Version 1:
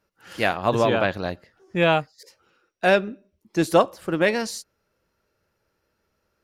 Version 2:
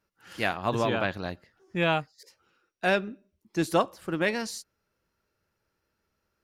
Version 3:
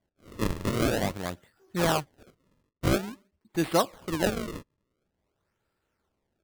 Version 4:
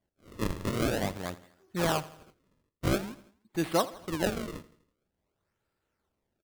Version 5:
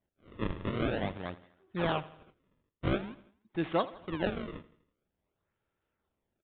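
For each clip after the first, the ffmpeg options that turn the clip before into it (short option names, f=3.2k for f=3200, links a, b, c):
-af "equalizer=f=540:w=1.7:g=-4,volume=-4.5dB"
-af "acrusher=samples=33:mix=1:aa=0.000001:lfo=1:lforange=52.8:lforate=0.48"
-af "aecho=1:1:82|164|246|328:0.126|0.0629|0.0315|0.0157,volume=-3dB"
-af "aresample=8000,aresample=44100,volume=-2.5dB"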